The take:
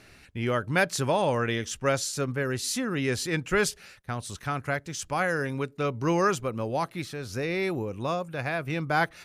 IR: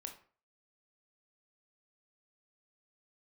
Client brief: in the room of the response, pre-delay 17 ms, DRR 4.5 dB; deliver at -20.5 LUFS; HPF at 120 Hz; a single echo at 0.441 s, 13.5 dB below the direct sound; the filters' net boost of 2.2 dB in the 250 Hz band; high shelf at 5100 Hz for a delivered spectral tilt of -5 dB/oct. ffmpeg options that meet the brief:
-filter_complex "[0:a]highpass=120,equalizer=f=250:t=o:g=3.5,highshelf=f=5.1k:g=-4,aecho=1:1:441:0.211,asplit=2[a][b];[1:a]atrim=start_sample=2205,adelay=17[c];[b][c]afir=irnorm=-1:irlink=0,volume=-1dB[d];[a][d]amix=inputs=2:normalize=0,volume=6dB"

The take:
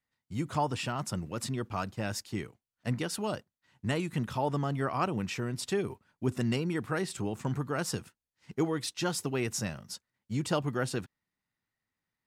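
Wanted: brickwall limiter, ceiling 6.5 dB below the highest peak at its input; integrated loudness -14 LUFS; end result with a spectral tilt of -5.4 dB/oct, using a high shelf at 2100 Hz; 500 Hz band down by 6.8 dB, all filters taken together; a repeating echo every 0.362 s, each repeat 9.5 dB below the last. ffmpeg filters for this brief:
-af "equalizer=f=500:t=o:g=-9,highshelf=f=2.1k:g=-5,alimiter=level_in=2dB:limit=-24dB:level=0:latency=1,volume=-2dB,aecho=1:1:362|724|1086|1448:0.335|0.111|0.0365|0.012,volume=23dB"

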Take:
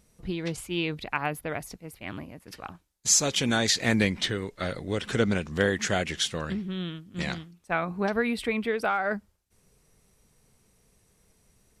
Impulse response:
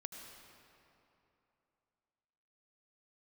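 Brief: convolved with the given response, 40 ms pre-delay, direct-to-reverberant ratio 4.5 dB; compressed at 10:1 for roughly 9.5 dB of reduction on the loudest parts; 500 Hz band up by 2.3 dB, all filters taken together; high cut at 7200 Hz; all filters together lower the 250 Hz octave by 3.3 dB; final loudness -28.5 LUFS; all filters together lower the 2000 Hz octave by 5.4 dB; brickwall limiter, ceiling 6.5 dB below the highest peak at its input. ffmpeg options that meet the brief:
-filter_complex "[0:a]lowpass=7.2k,equalizer=f=250:t=o:g=-5.5,equalizer=f=500:t=o:g=4.5,equalizer=f=2k:t=o:g=-7.5,acompressor=threshold=-28dB:ratio=10,alimiter=limit=-24dB:level=0:latency=1,asplit=2[a][b];[1:a]atrim=start_sample=2205,adelay=40[c];[b][c]afir=irnorm=-1:irlink=0,volume=-1.5dB[d];[a][d]amix=inputs=2:normalize=0,volume=6dB"

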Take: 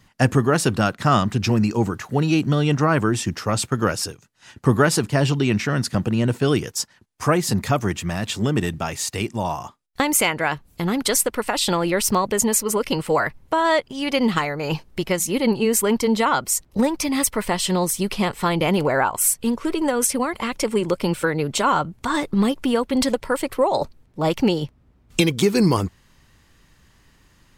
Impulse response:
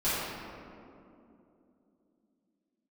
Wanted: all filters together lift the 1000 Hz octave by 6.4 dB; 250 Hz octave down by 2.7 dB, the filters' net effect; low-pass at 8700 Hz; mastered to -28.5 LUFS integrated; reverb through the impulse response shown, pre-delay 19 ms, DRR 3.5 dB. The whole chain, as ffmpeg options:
-filter_complex "[0:a]lowpass=8.7k,equalizer=f=250:t=o:g=-4,equalizer=f=1k:t=o:g=8,asplit=2[a][b];[1:a]atrim=start_sample=2205,adelay=19[c];[b][c]afir=irnorm=-1:irlink=0,volume=-15dB[d];[a][d]amix=inputs=2:normalize=0,volume=-10dB"

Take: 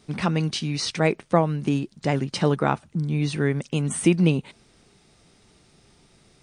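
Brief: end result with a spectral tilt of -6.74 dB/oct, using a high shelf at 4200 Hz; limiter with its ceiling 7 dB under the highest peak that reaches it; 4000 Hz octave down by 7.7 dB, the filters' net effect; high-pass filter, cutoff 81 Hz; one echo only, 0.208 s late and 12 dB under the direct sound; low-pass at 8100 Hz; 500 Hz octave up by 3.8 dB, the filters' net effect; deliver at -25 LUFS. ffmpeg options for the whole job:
-af "highpass=81,lowpass=8.1k,equalizer=f=500:t=o:g=5,equalizer=f=4k:t=o:g=-5,highshelf=f=4.2k:g=-8.5,alimiter=limit=-9dB:level=0:latency=1,aecho=1:1:208:0.251,volume=-1dB"

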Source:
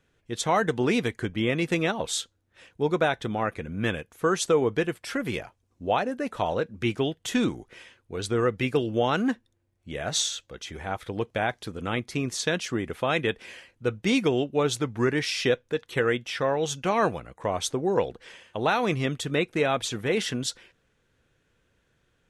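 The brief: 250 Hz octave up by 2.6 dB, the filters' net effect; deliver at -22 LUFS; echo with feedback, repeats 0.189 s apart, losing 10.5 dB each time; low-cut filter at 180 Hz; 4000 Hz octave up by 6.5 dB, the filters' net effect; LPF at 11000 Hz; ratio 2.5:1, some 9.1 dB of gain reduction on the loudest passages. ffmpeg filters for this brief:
-af "highpass=180,lowpass=11k,equalizer=f=250:t=o:g=4.5,equalizer=f=4k:t=o:g=8,acompressor=threshold=-31dB:ratio=2.5,aecho=1:1:189|378|567:0.299|0.0896|0.0269,volume=10.5dB"

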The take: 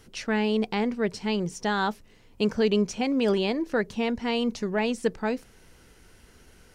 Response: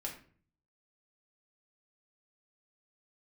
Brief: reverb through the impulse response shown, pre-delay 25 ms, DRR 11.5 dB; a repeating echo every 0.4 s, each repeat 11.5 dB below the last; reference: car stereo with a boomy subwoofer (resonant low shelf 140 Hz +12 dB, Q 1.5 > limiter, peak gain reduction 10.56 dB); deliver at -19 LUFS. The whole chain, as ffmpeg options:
-filter_complex "[0:a]aecho=1:1:400|800|1200:0.266|0.0718|0.0194,asplit=2[a][b];[1:a]atrim=start_sample=2205,adelay=25[c];[b][c]afir=irnorm=-1:irlink=0,volume=-11dB[d];[a][d]amix=inputs=2:normalize=0,lowshelf=f=140:t=q:w=1.5:g=12,volume=13dB,alimiter=limit=-9.5dB:level=0:latency=1"

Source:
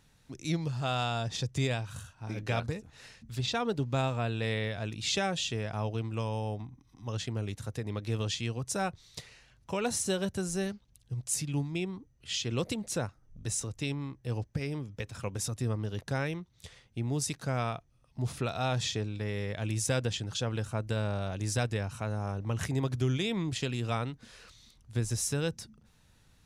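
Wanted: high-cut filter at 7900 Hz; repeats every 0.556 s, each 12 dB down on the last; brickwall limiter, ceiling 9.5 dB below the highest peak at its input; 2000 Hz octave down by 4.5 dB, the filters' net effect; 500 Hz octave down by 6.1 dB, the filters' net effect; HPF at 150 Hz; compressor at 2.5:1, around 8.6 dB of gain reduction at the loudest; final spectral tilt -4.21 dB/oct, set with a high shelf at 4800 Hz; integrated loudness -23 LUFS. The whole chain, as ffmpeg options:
-af "highpass=150,lowpass=7.9k,equalizer=f=500:t=o:g=-7.5,equalizer=f=2k:t=o:g=-6.5,highshelf=f=4.8k:g=3.5,acompressor=threshold=-42dB:ratio=2.5,alimiter=level_in=9.5dB:limit=-24dB:level=0:latency=1,volume=-9.5dB,aecho=1:1:556|1112|1668:0.251|0.0628|0.0157,volume=22dB"

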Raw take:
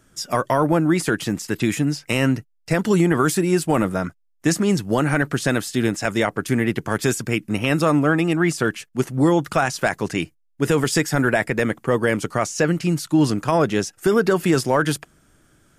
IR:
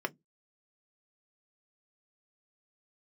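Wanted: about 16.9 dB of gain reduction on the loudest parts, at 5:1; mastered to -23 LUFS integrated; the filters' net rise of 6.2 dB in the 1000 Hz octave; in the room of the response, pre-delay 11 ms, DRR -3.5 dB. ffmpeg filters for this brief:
-filter_complex "[0:a]equalizer=f=1k:t=o:g=8,acompressor=threshold=-30dB:ratio=5,asplit=2[a][b];[1:a]atrim=start_sample=2205,adelay=11[c];[b][c]afir=irnorm=-1:irlink=0,volume=-1.5dB[d];[a][d]amix=inputs=2:normalize=0,volume=4.5dB"

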